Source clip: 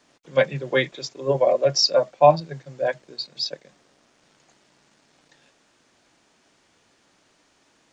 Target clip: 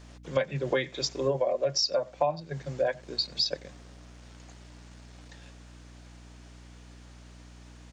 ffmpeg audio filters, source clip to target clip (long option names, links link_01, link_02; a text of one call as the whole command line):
ffmpeg -i in.wav -filter_complex "[0:a]asplit=2[link_01][link_02];[link_02]adelay=93.29,volume=-29dB,highshelf=frequency=4000:gain=-2.1[link_03];[link_01][link_03]amix=inputs=2:normalize=0,aeval=exprs='val(0)+0.00224*(sin(2*PI*60*n/s)+sin(2*PI*2*60*n/s)/2+sin(2*PI*3*60*n/s)/3+sin(2*PI*4*60*n/s)/4+sin(2*PI*5*60*n/s)/5)':channel_layout=same,acompressor=threshold=-28dB:ratio=12,volume=4.5dB" out.wav